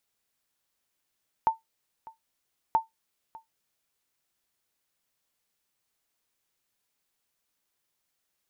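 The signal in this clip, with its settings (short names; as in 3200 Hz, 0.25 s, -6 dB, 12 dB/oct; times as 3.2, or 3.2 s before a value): sonar ping 896 Hz, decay 0.15 s, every 1.28 s, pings 2, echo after 0.60 s, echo -22 dB -14 dBFS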